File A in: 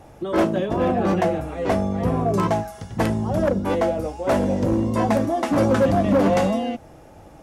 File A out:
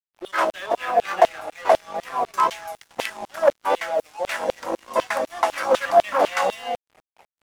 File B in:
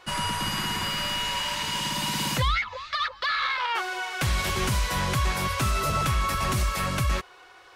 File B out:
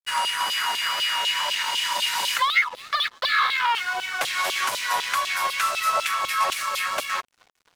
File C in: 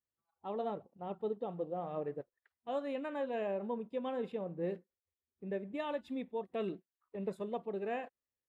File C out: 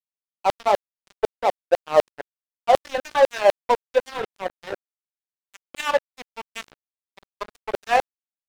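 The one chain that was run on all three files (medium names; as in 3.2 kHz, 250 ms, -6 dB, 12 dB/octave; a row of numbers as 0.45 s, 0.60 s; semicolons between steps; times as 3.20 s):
wow and flutter 22 cents; LFO high-pass saw down 4 Hz 550–3500 Hz; crossover distortion -43 dBFS; normalise loudness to -23 LUFS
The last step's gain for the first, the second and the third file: +2.0 dB, +2.5 dB, +21.0 dB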